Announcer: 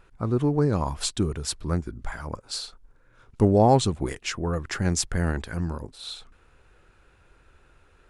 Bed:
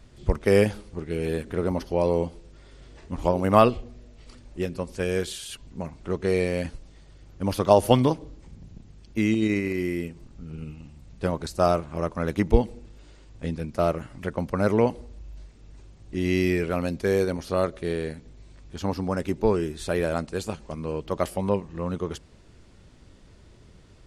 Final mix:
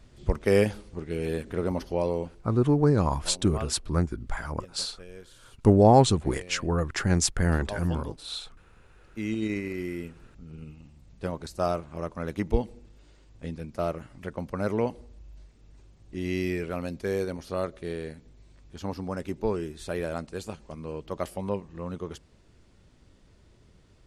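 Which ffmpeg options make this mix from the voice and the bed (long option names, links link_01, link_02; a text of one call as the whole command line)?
ffmpeg -i stem1.wav -i stem2.wav -filter_complex "[0:a]adelay=2250,volume=1dB[link_01];[1:a]volume=11.5dB,afade=type=out:start_time=1.87:duration=0.8:silence=0.133352,afade=type=in:start_time=8.99:duration=0.4:silence=0.199526[link_02];[link_01][link_02]amix=inputs=2:normalize=0" out.wav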